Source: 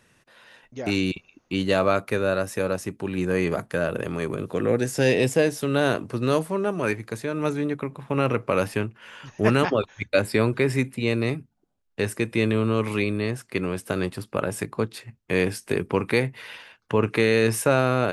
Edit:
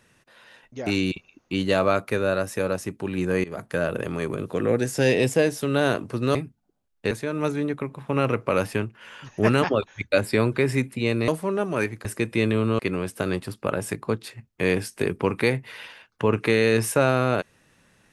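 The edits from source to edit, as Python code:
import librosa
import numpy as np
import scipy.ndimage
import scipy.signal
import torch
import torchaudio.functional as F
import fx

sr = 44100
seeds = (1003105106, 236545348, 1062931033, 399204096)

y = fx.edit(x, sr, fx.fade_in_from(start_s=3.44, length_s=0.29, floor_db=-21.0),
    fx.swap(start_s=6.35, length_s=0.77, other_s=11.29, other_length_s=0.76),
    fx.cut(start_s=12.79, length_s=0.7), tone=tone)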